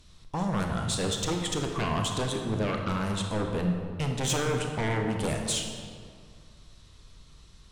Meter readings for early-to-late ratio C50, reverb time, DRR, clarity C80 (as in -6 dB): 3.5 dB, 2.1 s, 2.5 dB, 5.0 dB